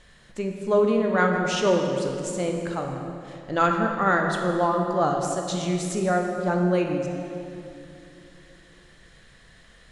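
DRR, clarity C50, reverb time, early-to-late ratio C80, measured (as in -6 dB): 2.0 dB, 3.0 dB, 2.8 s, 4.0 dB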